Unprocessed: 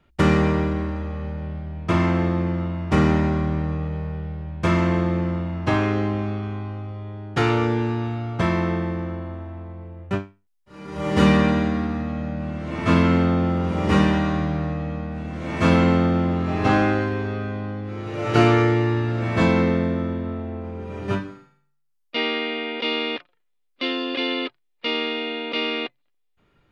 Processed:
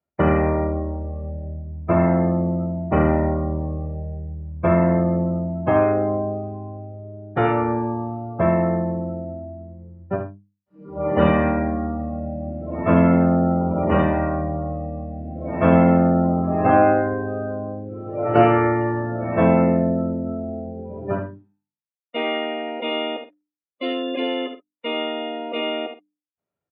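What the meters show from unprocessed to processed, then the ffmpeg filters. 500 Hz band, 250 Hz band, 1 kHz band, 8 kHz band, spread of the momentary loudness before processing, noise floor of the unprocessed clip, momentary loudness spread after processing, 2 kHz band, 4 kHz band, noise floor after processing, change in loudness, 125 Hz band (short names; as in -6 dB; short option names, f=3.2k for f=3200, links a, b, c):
+4.5 dB, +0.5 dB, +3.5 dB, n/a, 13 LU, -69 dBFS, 16 LU, -3.5 dB, -5.0 dB, under -85 dBFS, +1.5 dB, -1.0 dB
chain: -filter_complex "[0:a]lowpass=f=1.8k:p=1,afftdn=nr=25:nf=-31,highpass=f=72:w=0.5412,highpass=f=72:w=1.3066,equalizer=f=650:t=o:w=0.63:g=9.5,bandreject=f=50:t=h:w=6,bandreject=f=100:t=h:w=6,bandreject=f=150:t=h:w=6,bandreject=f=200:t=h:w=6,bandreject=f=250:t=h:w=6,bandreject=f=300:t=h:w=6,asplit=2[a][b];[b]adelay=50,volume=-11.5dB[c];[a][c]amix=inputs=2:normalize=0,asplit=2[d][e];[e]aecho=0:1:12|74:0.15|0.398[f];[d][f]amix=inputs=2:normalize=0"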